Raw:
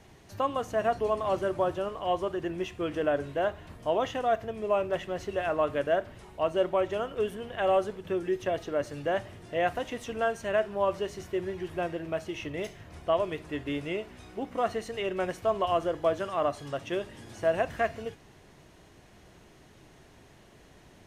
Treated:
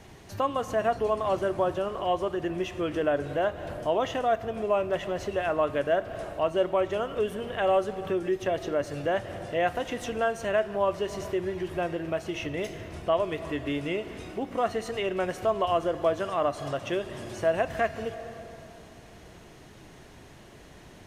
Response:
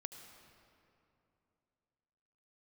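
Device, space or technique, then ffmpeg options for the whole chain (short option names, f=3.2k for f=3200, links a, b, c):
ducked reverb: -filter_complex "[0:a]asplit=3[a][b][c];[1:a]atrim=start_sample=2205[d];[b][d]afir=irnorm=-1:irlink=0[e];[c]apad=whole_len=928833[f];[e][f]sidechaincompress=threshold=-38dB:ratio=8:attack=16:release=157,volume=3dB[g];[a][g]amix=inputs=2:normalize=0"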